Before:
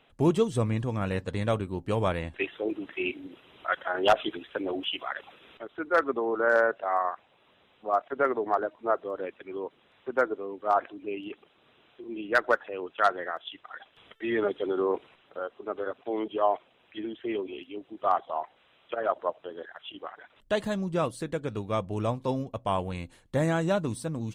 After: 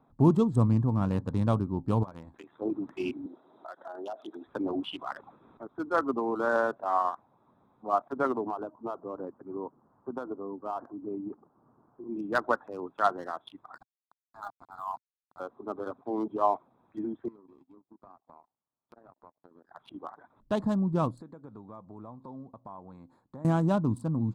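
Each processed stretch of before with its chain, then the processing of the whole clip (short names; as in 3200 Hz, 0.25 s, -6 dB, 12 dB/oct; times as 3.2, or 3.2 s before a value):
2.03–2.62 tilt +2 dB/oct + compressor 16:1, threshold -34 dBFS + AM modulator 76 Hz, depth 55%
3.26–4.46 speaker cabinet 330–7700 Hz, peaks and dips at 360 Hz +3 dB, 650 Hz +6 dB, 1100 Hz -5 dB, 2400 Hz -6 dB, 3700 Hz +6 dB + compressor 3:1, threshold -38 dBFS
8.44–12.07 LPF 1500 Hz 24 dB/oct + compressor 8:1, threshold -28 dBFS
13.76–15.4 brick-wall FIR band-pass 640–1700 Hz + sample gate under -45 dBFS
17.28–19.71 compressor 8:1, threshold -41 dBFS + power-law curve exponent 2
21.21–23.45 HPF 410 Hz 6 dB/oct + compressor 2.5:1, threshold -47 dBFS
whole clip: Wiener smoothing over 15 samples; graphic EQ 125/250/500/1000/2000 Hz +7/+8/-5/+9/-11 dB; gain -3 dB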